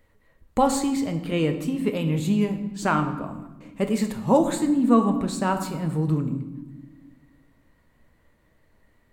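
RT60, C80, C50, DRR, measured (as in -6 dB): 1.2 s, 11.5 dB, 9.5 dB, 5.5 dB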